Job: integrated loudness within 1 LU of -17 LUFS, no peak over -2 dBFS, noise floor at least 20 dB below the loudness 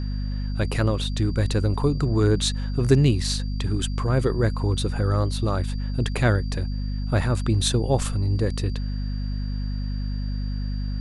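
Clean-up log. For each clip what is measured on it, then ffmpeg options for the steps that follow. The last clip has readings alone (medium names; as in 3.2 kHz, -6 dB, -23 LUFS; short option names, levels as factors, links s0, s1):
hum 50 Hz; highest harmonic 250 Hz; hum level -24 dBFS; steady tone 4.7 kHz; tone level -46 dBFS; loudness -24.5 LUFS; peak level -5.5 dBFS; loudness target -17.0 LUFS
-> -af "bandreject=f=50:t=h:w=6,bandreject=f=100:t=h:w=6,bandreject=f=150:t=h:w=6,bandreject=f=200:t=h:w=6,bandreject=f=250:t=h:w=6"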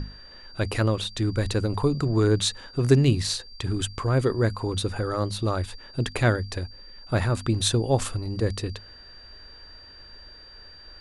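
hum not found; steady tone 4.7 kHz; tone level -46 dBFS
-> -af "bandreject=f=4700:w=30"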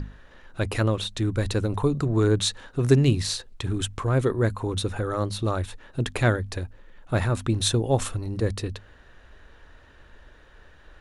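steady tone not found; loudness -25.5 LUFS; peak level -5.5 dBFS; loudness target -17.0 LUFS
-> -af "volume=2.66,alimiter=limit=0.794:level=0:latency=1"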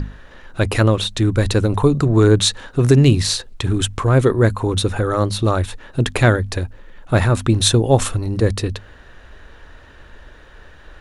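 loudness -17.5 LUFS; peak level -2.0 dBFS; noise floor -44 dBFS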